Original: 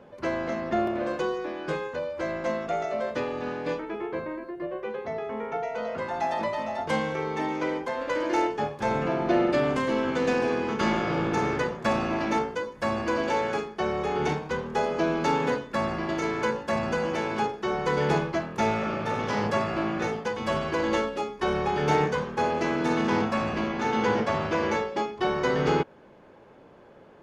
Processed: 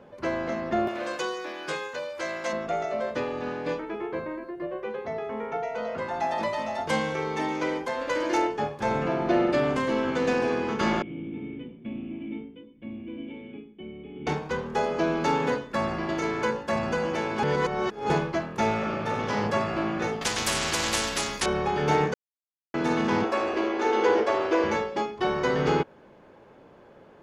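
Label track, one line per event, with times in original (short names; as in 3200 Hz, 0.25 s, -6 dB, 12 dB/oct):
0.880000	2.530000	tilt +3.5 dB/oct
6.380000	8.380000	high shelf 3500 Hz +6.5 dB
11.020000	14.270000	vocal tract filter i
17.430000	18.100000	reverse
20.210000	21.460000	spectral compressor 4:1
22.140000	22.740000	mute
23.240000	24.640000	resonant low shelf 250 Hz -12.5 dB, Q 3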